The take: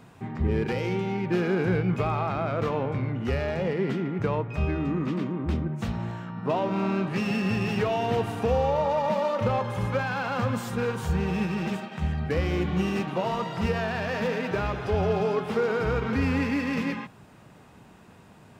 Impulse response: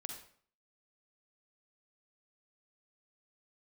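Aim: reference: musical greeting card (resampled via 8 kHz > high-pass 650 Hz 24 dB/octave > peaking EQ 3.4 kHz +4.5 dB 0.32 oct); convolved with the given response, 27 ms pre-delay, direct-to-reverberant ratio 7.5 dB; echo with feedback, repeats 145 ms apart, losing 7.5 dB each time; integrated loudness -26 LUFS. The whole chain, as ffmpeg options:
-filter_complex "[0:a]aecho=1:1:145|290|435|580|725:0.422|0.177|0.0744|0.0312|0.0131,asplit=2[s0][s1];[1:a]atrim=start_sample=2205,adelay=27[s2];[s1][s2]afir=irnorm=-1:irlink=0,volume=0.562[s3];[s0][s3]amix=inputs=2:normalize=0,aresample=8000,aresample=44100,highpass=f=650:w=0.5412,highpass=f=650:w=1.3066,equalizer=f=3400:t=o:w=0.32:g=4.5,volume=2"

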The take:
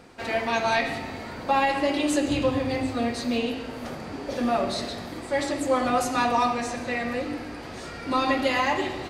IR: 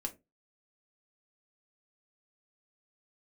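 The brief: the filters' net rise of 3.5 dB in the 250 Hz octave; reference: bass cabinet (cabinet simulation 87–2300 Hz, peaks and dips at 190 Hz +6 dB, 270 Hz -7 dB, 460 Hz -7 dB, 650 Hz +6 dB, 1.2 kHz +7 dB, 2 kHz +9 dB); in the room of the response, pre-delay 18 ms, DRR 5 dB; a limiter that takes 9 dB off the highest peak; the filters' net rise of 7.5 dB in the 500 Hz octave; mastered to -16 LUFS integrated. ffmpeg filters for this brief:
-filter_complex "[0:a]equalizer=f=250:t=o:g=6,equalizer=f=500:t=o:g=7.5,alimiter=limit=0.2:level=0:latency=1,asplit=2[s0][s1];[1:a]atrim=start_sample=2205,adelay=18[s2];[s1][s2]afir=irnorm=-1:irlink=0,volume=0.562[s3];[s0][s3]amix=inputs=2:normalize=0,highpass=f=87:w=0.5412,highpass=f=87:w=1.3066,equalizer=f=190:t=q:w=4:g=6,equalizer=f=270:t=q:w=4:g=-7,equalizer=f=460:t=q:w=4:g=-7,equalizer=f=650:t=q:w=4:g=6,equalizer=f=1200:t=q:w=4:g=7,equalizer=f=2000:t=q:w=4:g=9,lowpass=f=2300:w=0.5412,lowpass=f=2300:w=1.3066,volume=2"

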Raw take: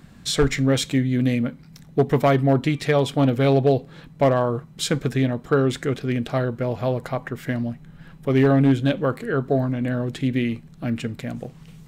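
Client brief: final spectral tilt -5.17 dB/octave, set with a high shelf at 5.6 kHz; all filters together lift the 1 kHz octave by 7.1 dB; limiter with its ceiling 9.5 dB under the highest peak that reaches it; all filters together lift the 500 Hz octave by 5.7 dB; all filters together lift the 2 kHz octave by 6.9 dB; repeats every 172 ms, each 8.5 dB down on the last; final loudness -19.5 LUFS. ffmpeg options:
-af "equalizer=f=500:t=o:g=5,equalizer=f=1000:t=o:g=6.5,equalizer=f=2000:t=o:g=5.5,highshelf=f=5600:g=5,alimiter=limit=0.299:level=0:latency=1,aecho=1:1:172|344|516|688:0.376|0.143|0.0543|0.0206,volume=1.26"

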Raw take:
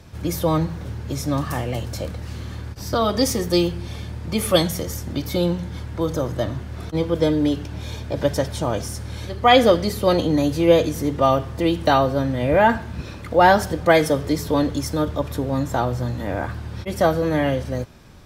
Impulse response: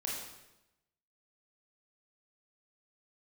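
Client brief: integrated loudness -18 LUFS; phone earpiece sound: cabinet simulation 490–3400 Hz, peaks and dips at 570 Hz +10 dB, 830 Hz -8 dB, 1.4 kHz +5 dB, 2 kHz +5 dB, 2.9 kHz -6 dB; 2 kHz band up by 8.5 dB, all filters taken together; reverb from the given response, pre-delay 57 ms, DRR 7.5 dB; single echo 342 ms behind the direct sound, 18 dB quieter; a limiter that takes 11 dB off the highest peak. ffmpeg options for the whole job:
-filter_complex "[0:a]equalizer=f=2000:t=o:g=6.5,alimiter=limit=0.282:level=0:latency=1,aecho=1:1:342:0.126,asplit=2[s0][s1];[1:a]atrim=start_sample=2205,adelay=57[s2];[s1][s2]afir=irnorm=-1:irlink=0,volume=0.316[s3];[s0][s3]amix=inputs=2:normalize=0,highpass=490,equalizer=f=570:t=q:w=4:g=10,equalizer=f=830:t=q:w=4:g=-8,equalizer=f=1400:t=q:w=4:g=5,equalizer=f=2000:t=q:w=4:g=5,equalizer=f=2900:t=q:w=4:g=-6,lowpass=f=3400:w=0.5412,lowpass=f=3400:w=1.3066,volume=1.58"

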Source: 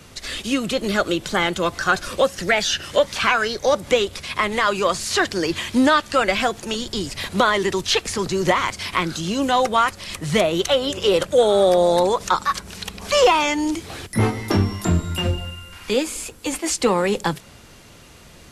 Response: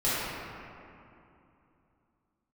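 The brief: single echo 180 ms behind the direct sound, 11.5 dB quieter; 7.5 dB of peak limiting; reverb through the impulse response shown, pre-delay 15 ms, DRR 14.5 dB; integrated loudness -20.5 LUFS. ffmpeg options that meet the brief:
-filter_complex "[0:a]alimiter=limit=0.251:level=0:latency=1,aecho=1:1:180:0.266,asplit=2[s0][s1];[1:a]atrim=start_sample=2205,adelay=15[s2];[s1][s2]afir=irnorm=-1:irlink=0,volume=0.0422[s3];[s0][s3]amix=inputs=2:normalize=0,volume=1.26"

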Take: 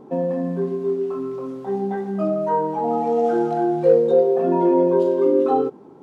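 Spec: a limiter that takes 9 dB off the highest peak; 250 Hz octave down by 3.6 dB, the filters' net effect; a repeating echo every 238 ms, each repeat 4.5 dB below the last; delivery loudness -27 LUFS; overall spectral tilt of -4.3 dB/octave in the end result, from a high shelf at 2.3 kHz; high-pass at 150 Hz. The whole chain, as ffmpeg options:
-af "highpass=150,equalizer=f=250:t=o:g=-5.5,highshelf=f=2300:g=9,alimiter=limit=0.188:level=0:latency=1,aecho=1:1:238|476|714|952|1190|1428|1666|1904|2142:0.596|0.357|0.214|0.129|0.0772|0.0463|0.0278|0.0167|0.01,volume=0.562"

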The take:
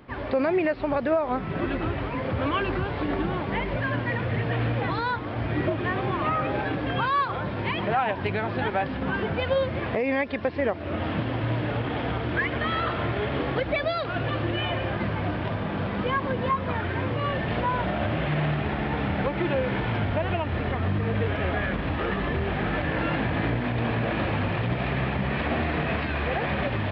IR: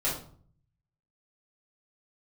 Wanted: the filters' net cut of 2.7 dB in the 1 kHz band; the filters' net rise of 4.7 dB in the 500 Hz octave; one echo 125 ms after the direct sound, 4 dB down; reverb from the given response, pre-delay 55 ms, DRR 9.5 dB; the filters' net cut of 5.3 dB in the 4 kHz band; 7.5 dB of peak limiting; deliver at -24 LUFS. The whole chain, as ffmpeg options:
-filter_complex "[0:a]equalizer=f=500:t=o:g=7.5,equalizer=f=1000:t=o:g=-6,equalizer=f=4000:t=o:g=-7.5,alimiter=limit=0.133:level=0:latency=1,aecho=1:1:125:0.631,asplit=2[s0][s1];[1:a]atrim=start_sample=2205,adelay=55[s2];[s1][s2]afir=irnorm=-1:irlink=0,volume=0.126[s3];[s0][s3]amix=inputs=2:normalize=0,volume=1.12"

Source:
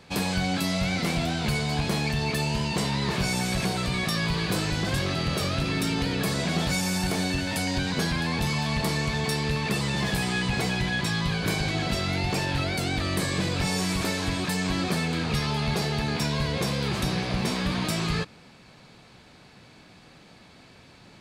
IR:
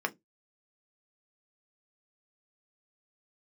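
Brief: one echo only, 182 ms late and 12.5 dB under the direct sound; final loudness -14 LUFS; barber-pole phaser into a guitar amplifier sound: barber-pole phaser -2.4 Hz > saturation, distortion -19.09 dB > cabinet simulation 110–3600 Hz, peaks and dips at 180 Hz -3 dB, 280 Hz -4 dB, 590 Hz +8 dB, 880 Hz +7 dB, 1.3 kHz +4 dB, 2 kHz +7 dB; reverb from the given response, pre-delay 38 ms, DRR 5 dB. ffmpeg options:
-filter_complex "[0:a]aecho=1:1:182:0.237,asplit=2[s0][s1];[1:a]atrim=start_sample=2205,adelay=38[s2];[s1][s2]afir=irnorm=-1:irlink=0,volume=0.266[s3];[s0][s3]amix=inputs=2:normalize=0,asplit=2[s4][s5];[s5]afreqshift=-2.4[s6];[s4][s6]amix=inputs=2:normalize=1,asoftclip=threshold=0.0794,highpass=110,equalizer=f=180:t=q:w=4:g=-3,equalizer=f=280:t=q:w=4:g=-4,equalizer=f=590:t=q:w=4:g=8,equalizer=f=880:t=q:w=4:g=7,equalizer=f=1300:t=q:w=4:g=4,equalizer=f=2000:t=q:w=4:g=7,lowpass=f=3600:w=0.5412,lowpass=f=3600:w=1.3066,volume=5.62"

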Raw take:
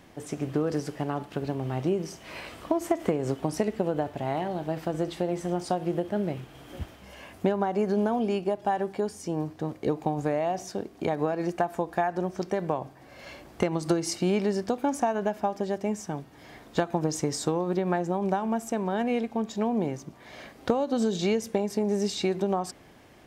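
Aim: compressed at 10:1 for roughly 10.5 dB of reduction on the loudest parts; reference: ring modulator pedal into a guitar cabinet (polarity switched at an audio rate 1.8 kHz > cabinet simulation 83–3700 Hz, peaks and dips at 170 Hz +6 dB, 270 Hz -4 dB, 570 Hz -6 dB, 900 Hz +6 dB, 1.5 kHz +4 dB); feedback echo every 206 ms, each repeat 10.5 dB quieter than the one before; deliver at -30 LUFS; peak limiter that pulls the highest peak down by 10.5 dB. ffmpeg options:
-af "acompressor=threshold=0.0282:ratio=10,alimiter=level_in=1.58:limit=0.0631:level=0:latency=1,volume=0.631,aecho=1:1:206|412|618:0.299|0.0896|0.0269,aeval=exprs='val(0)*sgn(sin(2*PI*1800*n/s))':c=same,highpass=83,equalizer=f=170:t=q:w=4:g=6,equalizer=f=270:t=q:w=4:g=-4,equalizer=f=570:t=q:w=4:g=-6,equalizer=f=900:t=q:w=4:g=6,equalizer=f=1500:t=q:w=4:g=4,lowpass=f=3700:w=0.5412,lowpass=f=3700:w=1.3066,volume=1.88"

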